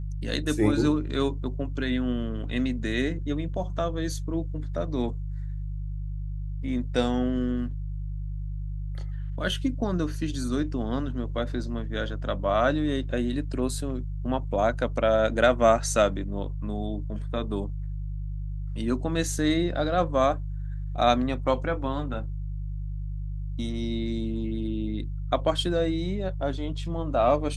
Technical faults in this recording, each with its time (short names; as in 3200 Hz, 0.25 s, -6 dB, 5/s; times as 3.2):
hum 50 Hz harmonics 3 -32 dBFS